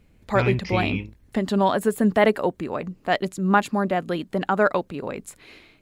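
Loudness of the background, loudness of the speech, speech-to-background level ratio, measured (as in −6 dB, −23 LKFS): −27.5 LKFS, −23.5 LKFS, 4.0 dB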